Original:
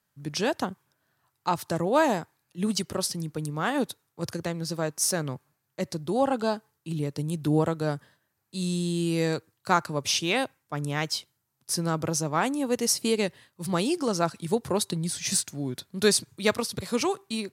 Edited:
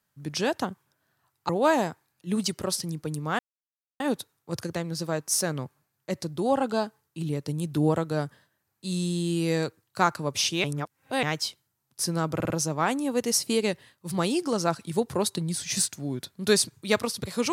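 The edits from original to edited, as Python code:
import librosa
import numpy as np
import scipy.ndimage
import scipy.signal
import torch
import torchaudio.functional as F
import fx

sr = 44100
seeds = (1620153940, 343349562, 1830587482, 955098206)

y = fx.edit(x, sr, fx.cut(start_s=1.49, length_s=0.31),
    fx.insert_silence(at_s=3.7, length_s=0.61),
    fx.reverse_span(start_s=10.34, length_s=0.59),
    fx.stutter(start_s=12.05, slice_s=0.05, count=4), tone=tone)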